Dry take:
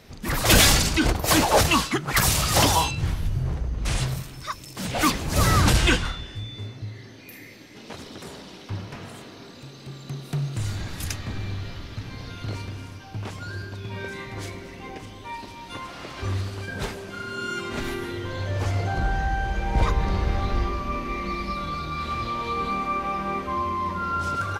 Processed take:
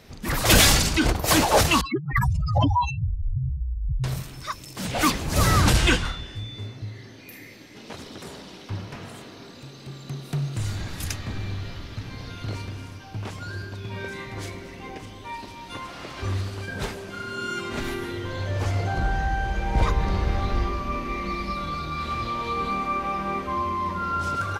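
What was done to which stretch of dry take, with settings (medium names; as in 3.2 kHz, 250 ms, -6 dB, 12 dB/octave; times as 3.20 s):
1.81–4.04 s: spectral contrast enhancement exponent 3.8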